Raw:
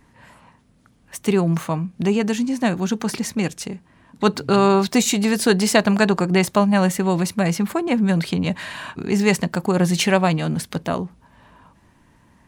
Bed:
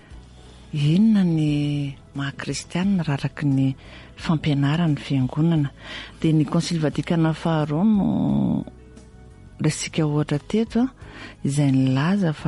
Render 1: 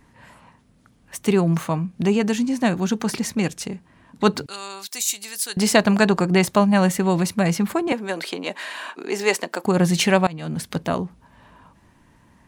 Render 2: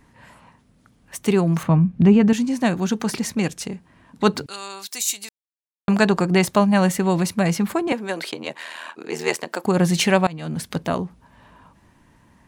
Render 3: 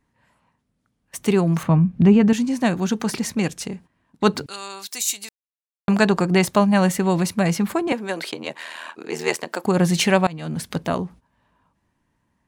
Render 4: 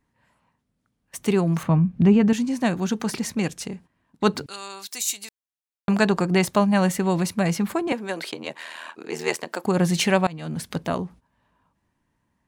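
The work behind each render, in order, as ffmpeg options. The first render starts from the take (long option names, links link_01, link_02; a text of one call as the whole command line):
ffmpeg -i in.wav -filter_complex "[0:a]asettb=1/sr,asplit=3[link_01][link_02][link_03];[link_01]atrim=end=4.464[link_04];[link_02]atrim=start=4.46:end=5.57,asetpts=PTS-STARTPTS,afade=type=in:duration=0.004:curve=qsin,afade=type=out:start_time=1.106:duration=0.004:curve=qsin,aderivative[link_05];[link_03]atrim=start=5.566[link_06];[link_04][link_05]acrossfade=duration=0.004:curve1=hsin:curve2=qsin[link_07];[link_07][link_06]acrossfade=duration=0.004:curve1=qsin:curve2=hsin,asettb=1/sr,asplit=3[link_08][link_09][link_10];[link_08]atrim=end=7.924[link_11];[link_09]atrim=start=7.92:end=9.65,asetpts=PTS-STARTPTS,afade=type=in:duration=0.004:curve=qsin,afade=type=out:start_time=1.726:duration=0.004:curve=qsin,highpass=frequency=320:width=0.5412,highpass=frequency=320:width=1.3066[link_12];[link_10]atrim=start=9.646[link_13];[link_11][link_12]acrossfade=duration=0.004:curve1=hsin:curve2=qsin[link_14];[link_14][link_13]acrossfade=duration=0.004:curve1=qsin:curve2=hsin,asplit=2[link_15][link_16];[link_15]atrim=end=10.27,asetpts=PTS-STARTPTS,afade=type=out:start_time=10.266:duration=0.004:curve=hsin:silence=0.0841395[link_17];[link_16]atrim=start=10.27,asetpts=PTS-STARTPTS,afade=type=in:duration=0.45:silence=0.0841395[link_18];[link_17][link_18]concat=n=2:v=0:a=1" out.wav
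ffmpeg -i in.wav -filter_complex "[0:a]asettb=1/sr,asplit=3[link_01][link_02][link_03];[link_01]atrim=end=1.634[link_04];[link_02]atrim=start=1.63:end=2.33,asetpts=PTS-STARTPTS,afade=type=in:duration=0.004:curve=qsin,afade=type=out:start_time=0.696:duration=0.004:curve=qsin,bass=frequency=250:gain=11,treble=frequency=4000:gain=-14[link_05];[link_03]atrim=start=2.326[link_06];[link_04][link_05]acrossfade=duration=0.004:curve1=hsin:curve2=qsin[link_07];[link_07][link_06]acrossfade=duration=0.004:curve1=qsin:curve2=hsin,asplit=3[link_08][link_09][link_10];[link_08]afade=type=out:start_time=8.31:duration=0.02[link_11];[link_09]aeval=exprs='val(0)*sin(2*PI*40*n/s)':channel_layout=same,afade=type=in:start_time=8.31:duration=0.02,afade=type=out:start_time=9.45:duration=0.02[link_12];[link_10]afade=type=in:start_time=9.45:duration=0.02[link_13];[link_11][link_12][link_13]amix=inputs=3:normalize=0,asplit=3[link_14][link_15][link_16];[link_14]atrim=end=5.29,asetpts=PTS-STARTPTS,afade=type=out:start_time=5.286:duration=0.004:curve=hsin[link_17];[link_15]atrim=start=5.29:end=5.88,asetpts=PTS-STARTPTS,volume=0[link_18];[link_16]atrim=start=5.88,asetpts=PTS-STARTPTS,afade=type=in:duration=0.004:curve=hsin[link_19];[link_17][link_18][link_19]concat=n=3:v=0:a=1" out.wav
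ffmpeg -i in.wav -af "agate=range=-15dB:threshold=-42dB:ratio=16:detection=peak" out.wav
ffmpeg -i in.wav -af "volume=-2.5dB" out.wav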